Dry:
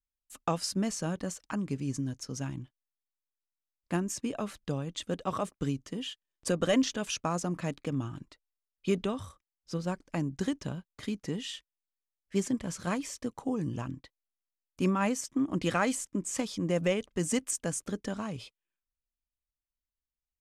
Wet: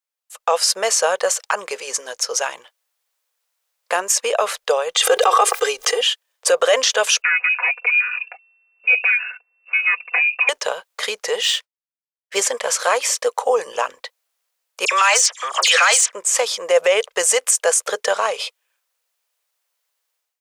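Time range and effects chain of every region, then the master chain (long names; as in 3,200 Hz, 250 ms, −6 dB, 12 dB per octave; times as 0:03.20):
0:04.95–0:06.01: comb filter 2.5 ms, depth 99% + background raised ahead of every attack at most 60 dB per second
0:07.22–0:10.49: comb filter 4.1 ms, depth 84% + downward compressor 1.5 to 1, threshold −52 dBFS + voice inversion scrambler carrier 2,700 Hz
0:11.42–0:12.36: running median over 3 samples + downward expander −60 dBFS
0:14.85–0:16.12: meter weighting curve ITU-R 468 + mid-hump overdrive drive 10 dB, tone 4,900 Hz, clips at −11 dBFS + all-pass dispersion lows, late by 66 ms, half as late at 2,800 Hz
whole clip: elliptic high-pass filter 470 Hz, stop band 40 dB; automatic gain control gain up to 15 dB; boost into a limiter +12 dB; level −4.5 dB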